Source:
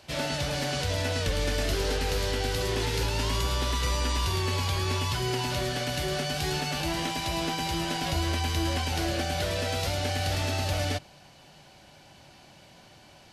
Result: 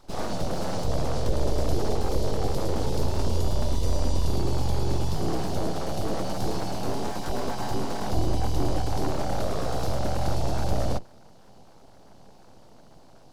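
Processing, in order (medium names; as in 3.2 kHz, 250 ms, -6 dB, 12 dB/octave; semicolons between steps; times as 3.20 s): octave divider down 2 oct, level +4 dB; FFT filter 830 Hz 0 dB, 1.3 kHz -28 dB, 4.9 kHz -8 dB; full-wave rectifier; trim +3 dB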